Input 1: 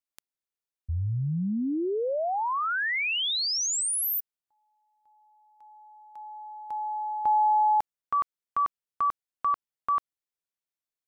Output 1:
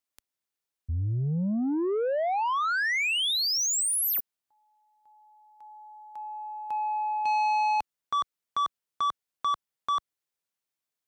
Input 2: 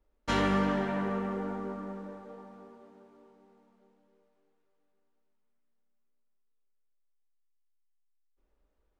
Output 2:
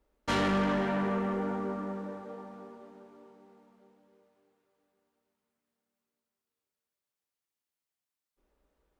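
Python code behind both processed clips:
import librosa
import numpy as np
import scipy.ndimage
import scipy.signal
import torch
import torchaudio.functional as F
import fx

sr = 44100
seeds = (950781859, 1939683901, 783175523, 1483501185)

y = fx.highpass(x, sr, hz=67.0, slope=6)
y = 10.0 ** (-27.5 / 20.0) * np.tanh(y / 10.0 ** (-27.5 / 20.0))
y = y * 10.0 ** (4.0 / 20.0)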